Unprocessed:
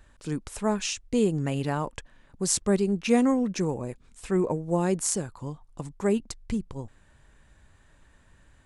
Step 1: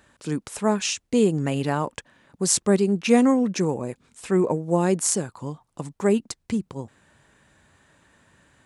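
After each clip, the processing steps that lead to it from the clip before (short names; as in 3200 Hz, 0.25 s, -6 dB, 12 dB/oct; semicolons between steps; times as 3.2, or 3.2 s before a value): HPF 130 Hz 12 dB/oct; gain +4.5 dB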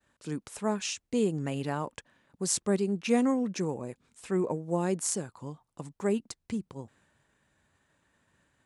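expander -54 dBFS; gain -8 dB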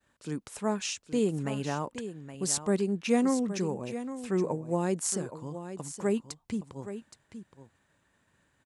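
echo 0.82 s -11.5 dB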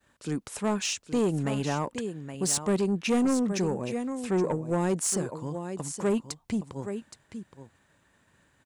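soft clip -24.5 dBFS, distortion -13 dB; gain +5 dB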